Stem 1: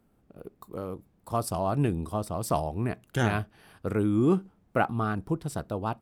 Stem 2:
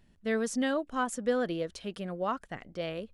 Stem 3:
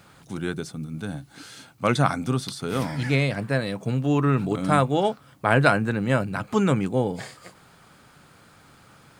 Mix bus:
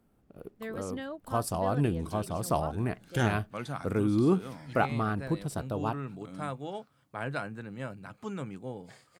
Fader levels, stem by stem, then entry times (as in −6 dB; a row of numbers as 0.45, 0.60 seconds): −1.5, −9.5, −16.5 decibels; 0.00, 0.35, 1.70 seconds